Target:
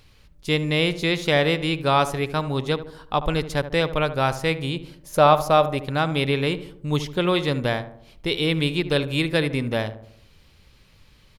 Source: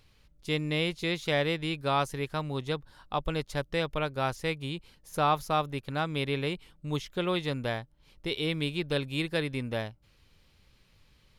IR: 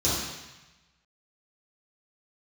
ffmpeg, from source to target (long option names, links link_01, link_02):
-filter_complex "[0:a]asettb=1/sr,asplit=3[link_01][link_02][link_03];[link_01]atrim=end=4.744[link_04];[link_02]atrim=start=4.74:end=5.8,asetpts=PTS-STARTPTS,afade=type=in:duration=0.004:curve=qsin,afade=type=out:start_time=1.056:duration=0.004:curve=qsin,equalizer=frequency=580:width_type=o:width=0.25:gain=10[link_05];[link_03]atrim=start=5.796[link_06];[link_04][link_05]acrossfade=duration=0.004:curve1=hsin:curve2=qsin[link_07];[link_07][link_06]acrossfade=duration=0.004:curve1=qsin:curve2=hsin,asplit=2[link_08][link_09];[link_09]adelay=74,lowpass=frequency=1200:poles=1,volume=-11dB,asplit=2[link_10][link_11];[link_11]adelay=74,lowpass=frequency=1200:poles=1,volume=0.54,asplit=2[link_12][link_13];[link_13]adelay=74,lowpass=frequency=1200:poles=1,volume=0.54,asplit=2[link_14][link_15];[link_15]adelay=74,lowpass=frequency=1200:poles=1,volume=0.54,asplit=2[link_16][link_17];[link_17]adelay=74,lowpass=frequency=1200:poles=1,volume=0.54,asplit=2[link_18][link_19];[link_19]adelay=74,lowpass=frequency=1200:poles=1,volume=0.54[link_20];[link_08][link_10][link_12][link_14][link_16][link_18][link_20]amix=inputs=7:normalize=0,volume=8dB"